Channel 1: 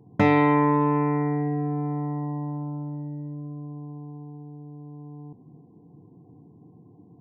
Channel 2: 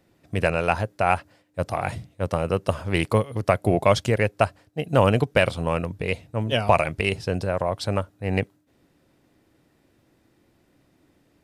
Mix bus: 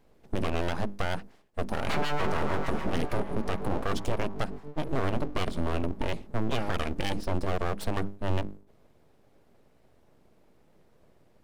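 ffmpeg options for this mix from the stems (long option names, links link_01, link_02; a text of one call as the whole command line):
ffmpeg -i stem1.wav -i stem2.wav -filter_complex "[0:a]highpass=130,agate=range=-7dB:threshold=-42dB:ratio=16:detection=peak,acrossover=split=660[link_01][link_02];[link_01]aeval=exprs='val(0)*(1-1/2+1/2*cos(2*PI*6.7*n/s))':channel_layout=same[link_03];[link_02]aeval=exprs='val(0)*(1-1/2-1/2*cos(2*PI*6.7*n/s))':channel_layout=same[link_04];[link_03][link_04]amix=inputs=2:normalize=0,adelay=1700,volume=-1.5dB[link_05];[1:a]lowshelf=frequency=500:gain=11.5,bandreject=frequency=50:width_type=h:width=6,bandreject=frequency=100:width_type=h:width=6,bandreject=frequency=150:width_type=h:width=6,bandreject=frequency=200:width_type=h:width=6,bandreject=frequency=250:width_type=h:width=6,bandreject=frequency=300:width_type=h:width=6,bandreject=frequency=350:width_type=h:width=6,acompressor=threshold=-16dB:ratio=4,volume=-5dB[link_06];[link_05][link_06]amix=inputs=2:normalize=0,aeval=exprs='abs(val(0))':channel_layout=same,alimiter=limit=-16.5dB:level=0:latency=1:release=10" out.wav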